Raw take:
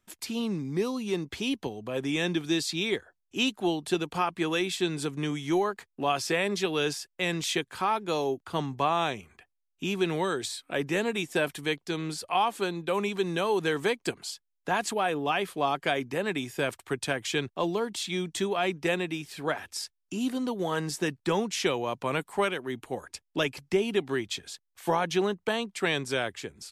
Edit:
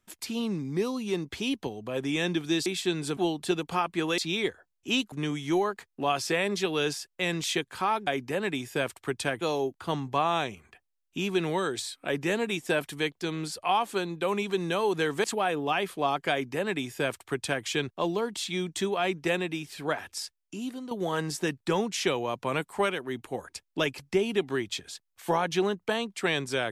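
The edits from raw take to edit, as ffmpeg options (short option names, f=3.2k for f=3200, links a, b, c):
-filter_complex "[0:a]asplit=9[a][b][c][d][e][f][g][h][i];[a]atrim=end=2.662[j];[b]atrim=start=4.608:end=5.122[k];[c]atrim=start=3.598:end=4.612[l];[d]atrim=start=2.658:end=3.602[m];[e]atrim=start=5.118:end=8.072[n];[f]atrim=start=15.898:end=17.242[o];[g]atrim=start=8.068:end=13.902[p];[h]atrim=start=14.828:end=20.5,asetpts=PTS-STARTPTS,afade=t=out:st=4.892:d=0.78:silence=0.298538[q];[i]atrim=start=20.5,asetpts=PTS-STARTPTS,afade=t=in:d=0.004:c=hsin:silence=0.298538[r];[j][k]acrossfade=d=0.004:c1=hsin:c2=hsin[s];[s][l]acrossfade=d=0.004:c1=hsin:c2=hsin[t];[t][m]acrossfade=d=0.004:c1=hsin:c2=hsin[u];[u][n]acrossfade=d=0.004:c1=hsin:c2=hsin[v];[v][o]acrossfade=d=0.004:c1=hsin:c2=hsin[w];[w][p]acrossfade=d=0.004:c1=hsin:c2=hsin[x];[q][r]concat=n=2:v=0:a=1[y];[x][y]acrossfade=d=0.004:c1=hsin:c2=hsin"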